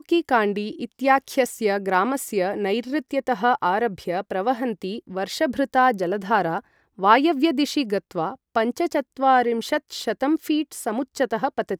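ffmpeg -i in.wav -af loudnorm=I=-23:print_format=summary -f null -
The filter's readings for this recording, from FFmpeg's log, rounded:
Input Integrated:    -22.9 LUFS
Input True Peak:      -2.9 dBTP
Input LRA:             2.5 LU
Input Threshold:     -32.9 LUFS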